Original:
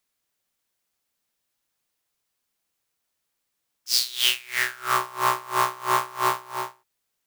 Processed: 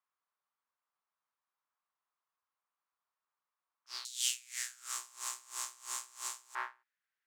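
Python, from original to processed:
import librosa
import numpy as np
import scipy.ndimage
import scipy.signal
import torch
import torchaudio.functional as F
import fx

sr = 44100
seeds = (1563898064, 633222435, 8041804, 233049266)

y = fx.bandpass_q(x, sr, hz=fx.steps((0.0, 1100.0), (4.05, 7300.0), (6.55, 1700.0)), q=3.3)
y = F.gain(torch.from_numpy(y), 1.0).numpy()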